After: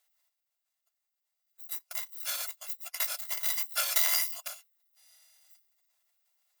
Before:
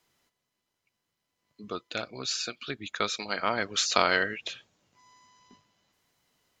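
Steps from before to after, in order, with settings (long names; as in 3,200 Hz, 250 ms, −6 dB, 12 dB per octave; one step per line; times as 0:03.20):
samples in bit-reversed order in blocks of 256 samples
formants moved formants −6 semitones
linear-phase brick-wall high-pass 530 Hz
level −2 dB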